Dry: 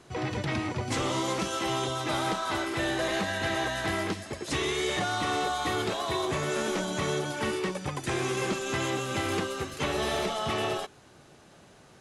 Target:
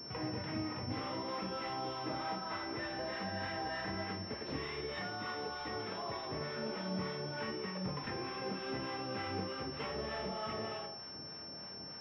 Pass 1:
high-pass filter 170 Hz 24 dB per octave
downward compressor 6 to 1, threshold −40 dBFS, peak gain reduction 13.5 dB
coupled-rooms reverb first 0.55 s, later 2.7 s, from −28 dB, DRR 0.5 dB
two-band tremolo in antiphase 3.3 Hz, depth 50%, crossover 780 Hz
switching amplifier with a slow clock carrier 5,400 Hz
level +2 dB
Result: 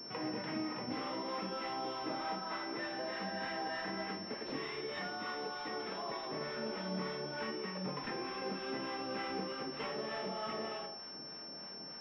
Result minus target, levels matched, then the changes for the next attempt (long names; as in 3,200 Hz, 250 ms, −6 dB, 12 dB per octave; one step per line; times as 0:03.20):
125 Hz band −5.5 dB
change: high-pass filter 64 Hz 24 dB per octave